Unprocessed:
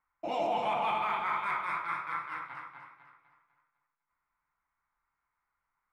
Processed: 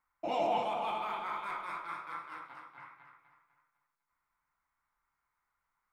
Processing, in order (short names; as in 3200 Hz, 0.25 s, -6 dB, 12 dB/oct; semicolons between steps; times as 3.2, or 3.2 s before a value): 0.63–2.78 graphic EQ 125/1000/2000 Hz -11/-4/-9 dB